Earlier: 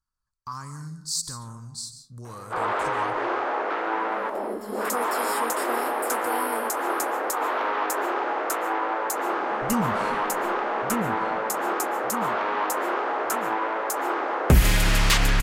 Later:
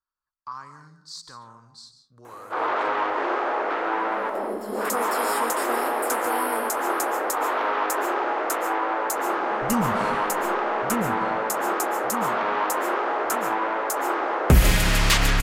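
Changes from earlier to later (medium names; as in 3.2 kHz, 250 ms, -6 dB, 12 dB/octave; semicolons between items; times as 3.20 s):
speech: add three-band isolator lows -16 dB, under 350 Hz, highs -23 dB, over 4.2 kHz; background: send +8.5 dB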